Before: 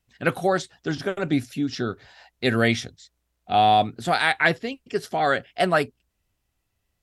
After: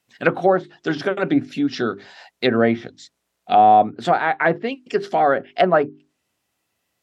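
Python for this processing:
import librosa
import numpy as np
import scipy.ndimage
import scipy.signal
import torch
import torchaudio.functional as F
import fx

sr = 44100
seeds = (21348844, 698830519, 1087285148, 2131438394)

y = scipy.signal.sosfilt(scipy.signal.butter(2, 200.0, 'highpass', fs=sr, output='sos'), x)
y = fx.env_lowpass_down(y, sr, base_hz=1100.0, full_db=-19.0)
y = fx.hum_notches(y, sr, base_hz=50, count=8)
y = y * 10.0 ** (6.5 / 20.0)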